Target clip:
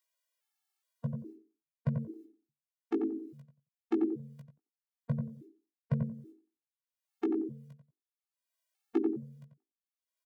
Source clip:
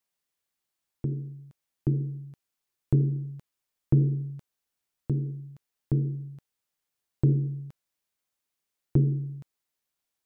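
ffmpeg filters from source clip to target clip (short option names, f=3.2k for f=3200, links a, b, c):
-filter_complex "[0:a]agate=range=-41dB:threshold=-40dB:ratio=16:detection=peak,highpass=120,acrossover=split=460[a][b];[b]acompressor=mode=upward:threshold=-51dB:ratio=2.5[c];[a][c]amix=inputs=2:normalize=0,asplit=2[d][e];[e]adelay=18,volume=-5dB[f];[d][f]amix=inputs=2:normalize=0,asplit=2[g][h];[h]adelay=90,lowpass=f=850:p=1,volume=-3dB,asplit=2[i][j];[j]adelay=90,lowpass=f=850:p=1,volume=0.21,asplit=2[k][l];[l]adelay=90,lowpass=f=850:p=1,volume=0.21[m];[i][k][m]amix=inputs=3:normalize=0[n];[g][n]amix=inputs=2:normalize=0,afftfilt=real='re*gt(sin(2*PI*1.2*pts/sr)*(1-2*mod(floor(b*sr/1024/230),2)),0)':imag='im*gt(sin(2*PI*1.2*pts/sr)*(1-2*mod(floor(b*sr/1024/230),2)),0)':win_size=1024:overlap=0.75"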